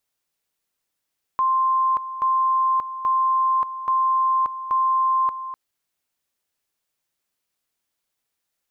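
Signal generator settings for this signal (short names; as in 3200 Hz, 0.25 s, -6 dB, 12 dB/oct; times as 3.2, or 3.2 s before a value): two-level tone 1050 Hz -16.5 dBFS, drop 12 dB, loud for 0.58 s, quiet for 0.25 s, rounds 5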